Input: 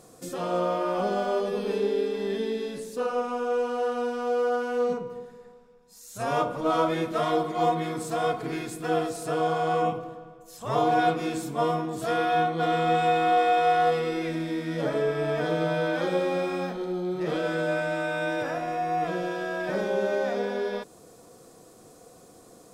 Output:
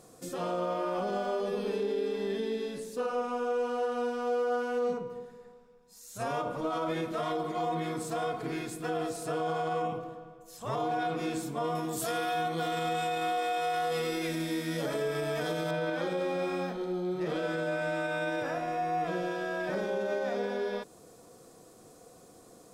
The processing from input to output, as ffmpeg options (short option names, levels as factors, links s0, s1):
-filter_complex "[0:a]asettb=1/sr,asplit=3[s0][s1][s2];[s0]atrim=end=11.754[s3];[s1]atrim=start=11.75:end=15.71,asetpts=PTS-STARTPTS,afade=t=in:d=0.004:c=qsin,afade=t=out:st=3.956:d=0.004:c=qsin,aemphasis=mode=production:type=75kf[s4];[s2]atrim=start=15.706[s5];[s3][s4]acrossfade=d=0.004:c1=hsin:c2=qsin[s6];[s6][s5]acrossfade=d=0.004:c1=qsin:c2=hsin,alimiter=limit=0.0944:level=0:latency=1:release=52,volume=0.708"